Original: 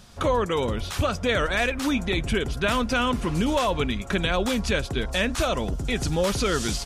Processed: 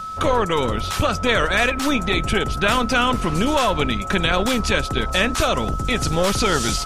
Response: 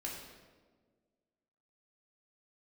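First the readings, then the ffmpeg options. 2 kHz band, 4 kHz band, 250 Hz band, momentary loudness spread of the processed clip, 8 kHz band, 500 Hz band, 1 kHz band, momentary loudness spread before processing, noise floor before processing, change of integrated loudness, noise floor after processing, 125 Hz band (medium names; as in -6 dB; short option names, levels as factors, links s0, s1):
+6.0 dB, +6.0 dB, +3.5 dB, 4 LU, +6.0 dB, +3.5 dB, +7.0 dB, 4 LU, -34 dBFS, +5.0 dB, -27 dBFS, +3.5 dB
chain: -filter_complex "[0:a]aeval=exprs='val(0)+0.02*sin(2*PI*1300*n/s)':c=same,acrossover=split=810|2500[s0][s1][s2];[s0]aeval=exprs='clip(val(0),-1,0.0224)':c=same[s3];[s3][s1][s2]amix=inputs=3:normalize=0,volume=2"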